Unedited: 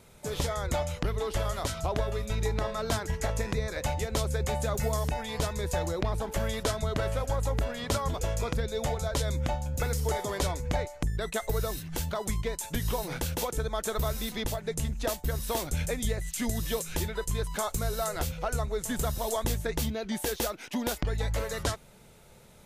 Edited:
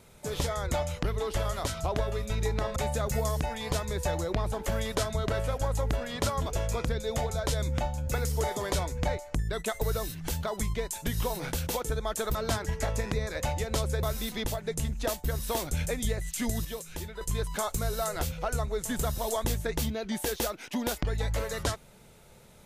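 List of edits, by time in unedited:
2.76–4.44 s: move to 14.03 s
16.65–17.21 s: gain -7 dB

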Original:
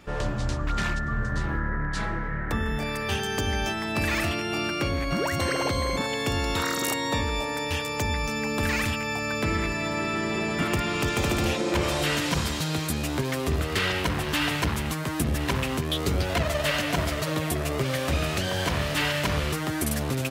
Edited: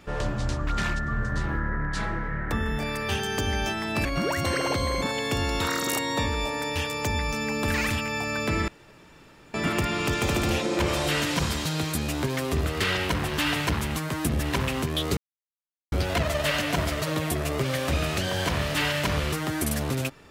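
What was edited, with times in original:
4.05–5.00 s: delete
9.63–10.49 s: room tone
16.12 s: insert silence 0.75 s

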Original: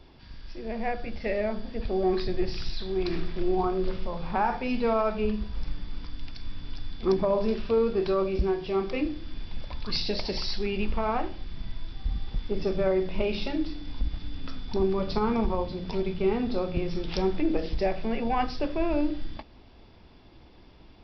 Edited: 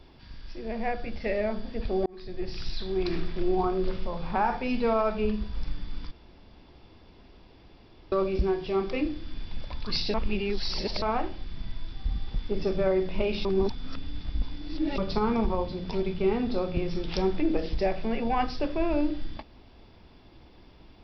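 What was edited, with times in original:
2.06–2.76 s: fade in
6.11–8.12 s: room tone
10.14–11.02 s: reverse
13.45–14.98 s: reverse

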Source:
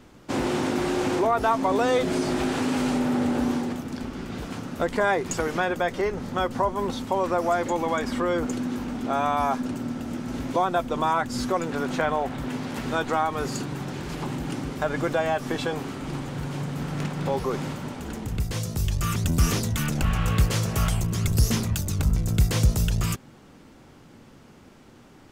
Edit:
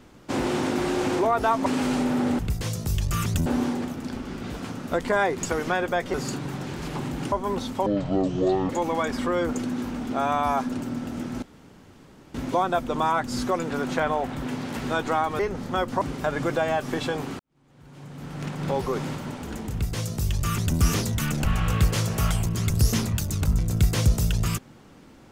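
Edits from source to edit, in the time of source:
1.66–2.61 s: delete
6.02–6.64 s: swap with 13.41–14.59 s
7.18–7.63 s: speed 54%
10.36 s: insert room tone 0.92 s
15.97–17.25 s: fade in quadratic
18.29–19.36 s: copy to 3.34 s

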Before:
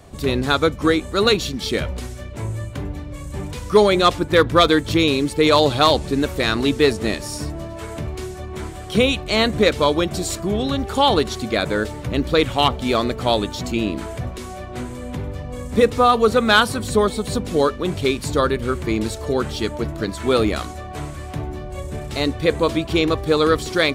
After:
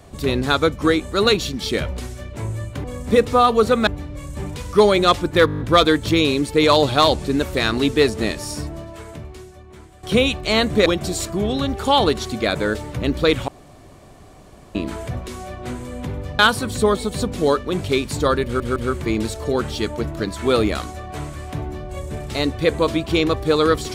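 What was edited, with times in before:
4.43 s: stutter 0.02 s, 8 plays
7.37–8.86 s: fade out quadratic, to -13.5 dB
9.69–9.96 s: delete
12.58–13.85 s: room tone
15.49–16.52 s: move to 2.84 s
18.57 s: stutter 0.16 s, 3 plays

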